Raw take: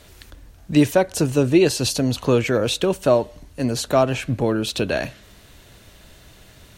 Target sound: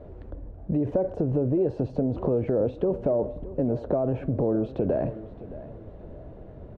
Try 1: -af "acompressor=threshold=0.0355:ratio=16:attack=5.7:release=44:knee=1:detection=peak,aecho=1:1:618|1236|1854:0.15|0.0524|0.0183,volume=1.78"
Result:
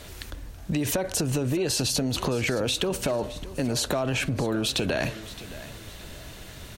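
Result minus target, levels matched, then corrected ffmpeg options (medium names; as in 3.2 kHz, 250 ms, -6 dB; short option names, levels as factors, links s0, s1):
500 Hz band -3.5 dB
-af "acompressor=threshold=0.0355:ratio=16:attack=5.7:release=44:knee=1:detection=peak,lowpass=f=560:t=q:w=1.6,aecho=1:1:618|1236|1854:0.15|0.0524|0.0183,volume=1.78"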